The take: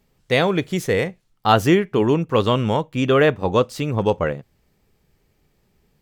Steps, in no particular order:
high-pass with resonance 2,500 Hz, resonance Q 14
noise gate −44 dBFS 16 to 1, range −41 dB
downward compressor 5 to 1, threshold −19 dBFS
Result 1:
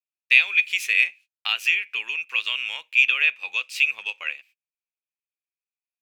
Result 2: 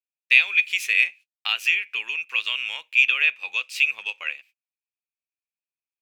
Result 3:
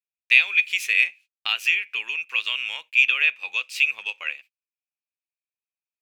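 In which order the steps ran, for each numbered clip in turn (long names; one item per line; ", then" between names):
noise gate, then downward compressor, then high-pass with resonance
downward compressor, then noise gate, then high-pass with resonance
downward compressor, then high-pass with resonance, then noise gate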